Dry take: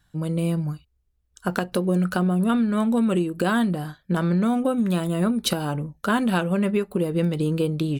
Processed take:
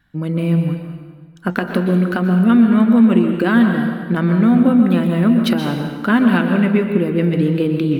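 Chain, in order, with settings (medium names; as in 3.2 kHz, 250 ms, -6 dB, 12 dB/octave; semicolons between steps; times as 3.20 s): graphic EQ 250/2000/8000 Hz +10/+10/-12 dB; plate-style reverb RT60 1.5 s, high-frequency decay 0.85×, pre-delay 110 ms, DRR 4.5 dB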